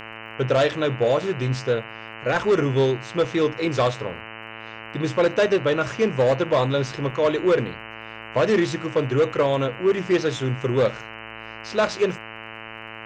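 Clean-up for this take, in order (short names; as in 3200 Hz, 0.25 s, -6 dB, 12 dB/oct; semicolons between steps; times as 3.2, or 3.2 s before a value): de-click; de-hum 111.2 Hz, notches 27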